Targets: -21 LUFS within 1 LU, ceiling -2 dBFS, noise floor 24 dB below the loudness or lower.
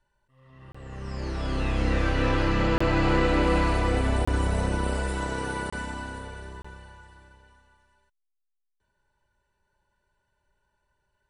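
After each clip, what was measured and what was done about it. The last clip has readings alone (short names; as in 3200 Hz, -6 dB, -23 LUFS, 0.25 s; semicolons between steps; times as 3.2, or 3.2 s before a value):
dropouts 5; longest dropout 25 ms; loudness -26.5 LUFS; peak -11.0 dBFS; loudness target -21.0 LUFS
-> interpolate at 0.72/2.78/4.25/5.7/6.62, 25 ms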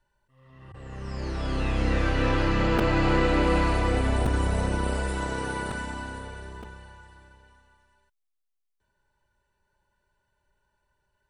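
dropouts 0; loudness -26.5 LUFS; peak -11.0 dBFS; loudness target -21.0 LUFS
-> gain +5.5 dB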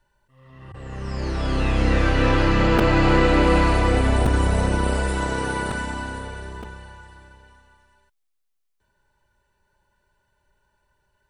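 loudness -21.0 LUFS; peak -5.5 dBFS; noise floor -72 dBFS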